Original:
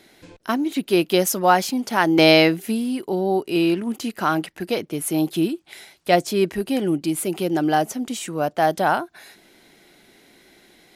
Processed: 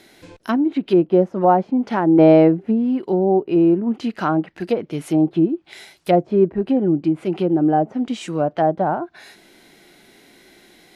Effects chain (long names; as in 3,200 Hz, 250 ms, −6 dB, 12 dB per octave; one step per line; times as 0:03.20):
harmonic and percussive parts rebalanced harmonic +6 dB
treble cut that deepens with the level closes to 760 Hz, closed at −12.5 dBFS
level −1 dB